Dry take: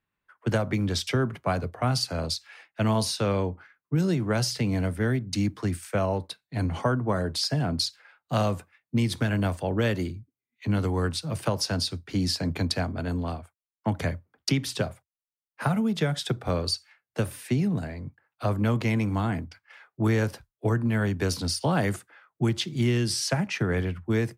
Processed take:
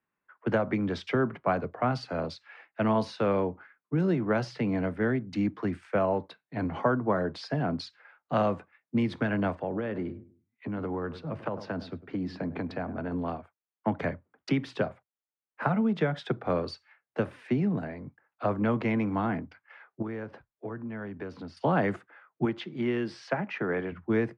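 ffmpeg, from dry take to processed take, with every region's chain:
-filter_complex "[0:a]asettb=1/sr,asplit=3[a][b][c];[a]atrim=end=9.554[d];[b]atrim=start=9.55:end=13.12,asetpts=PTS-STARTPTS,afade=t=in:d=0.004:c=qsin,afade=t=out:st=3.566:d=0.004:c=qsin,aemphasis=mode=reproduction:type=75kf,asplit=2[e][f];[f]adelay=101,lowpass=f=1.1k:p=1,volume=-16dB,asplit=2[g][h];[h]adelay=101,lowpass=f=1.1k:p=1,volume=0.33,asplit=2[i][j];[j]adelay=101,lowpass=f=1.1k:p=1,volume=0.33[k];[e][g][i][k]amix=inputs=4:normalize=0,atrim=end_sample=157437,acompressor=threshold=-26dB:ratio=5:attack=3.2:release=140:knee=1:detection=peak[l];[c]atrim=start=13.116[m];[d][l]acrossfade=d=0.004:c1=hsin:c2=qsin[n];[n][m]acrossfade=d=0.004:c1=qsin:c2=hsin,asettb=1/sr,asplit=3[o][p][q];[o]atrim=end=20.024[r];[p]atrim=start=20.02:end=21.57,asetpts=PTS-STARTPTS,afade=t=in:d=0.004:c=qsin,afade=t=out:st=1.546:d=0.004:c=qsin,aemphasis=mode=reproduction:type=50kf,acompressor=threshold=-40dB:ratio=2:attack=3.2:release=140:knee=1:detection=peak[s];[q]atrim=start=21.566[t];[r][s]acrossfade=d=0.004:c1=hsin:c2=qsin[u];[u][t]acrossfade=d=0.004:c1=qsin:c2=hsin,asettb=1/sr,asplit=3[v][w][x];[v]atrim=end=22.454[y];[w]atrim=start=22.45:end=23.92,asetpts=PTS-STARTPTS,afade=t=in:d=0.004:c=qsin,afade=t=out:st=1.466:d=0.004:c=qsin,highpass=f=260:p=1,highshelf=f=5.8k:g=-10.5[z];[x]atrim=start=23.916[aa];[y][z]acrossfade=d=0.004:c1=hsin:c2=qsin[ab];[ab][aa]acrossfade=d=0.004:c1=qsin:c2=hsin,lowpass=4.3k,acrossover=split=160 2400:gain=0.178 1 0.2[ac][ad][ae];[ac][ad][ae]amix=inputs=3:normalize=0,volume=1dB"

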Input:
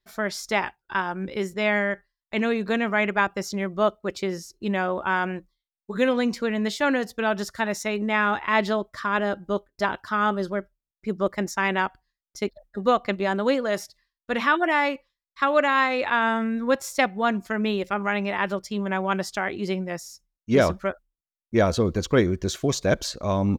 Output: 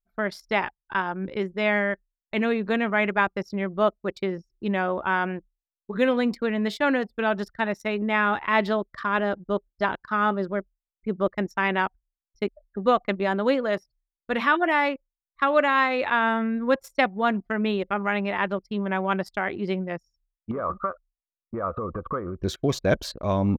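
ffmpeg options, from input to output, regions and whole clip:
-filter_complex "[0:a]asettb=1/sr,asplit=3[a][b][c];[a]atrim=end=10.024[d];[b]atrim=start=10.02:end=10.5,asetpts=PTS-STARTPTS,afade=t=in:d=0.004:c=qsin,afade=t=out:st=0.476:d=0.004:c=qsin,highpass=46,bandreject=f=3.2k:w=15[e];[c]atrim=start=10.496[f];[d][e]acrossfade=d=0.004:c1=hsin:c2=qsin[g];[g][f]acrossfade=d=0.004:c1=qsin:c2=hsin,asettb=1/sr,asplit=3[h][i][j];[h]atrim=end=20.514[k];[i]atrim=start=20.51:end=22.42,asetpts=PTS-STARTPTS,afade=t=in:d=0.004:c=qsin,afade=t=out:st=1.906:d=0.004:c=qsin,equalizer=f=520:w=4.7:g=7,acompressor=threshold=-28dB:ratio=16:attack=3.2:release=140:knee=1:detection=peak,lowpass=f=1.2k:t=q:w=15[l];[j]atrim=start=22.416[m];[k][l]acrossfade=d=0.004:c1=hsin:c2=qsin[n];[n][m]acrossfade=d=0.004:c1=qsin:c2=hsin,equalizer=f=6.7k:t=o:w=0.86:g=-8.5,anlmdn=1.58"

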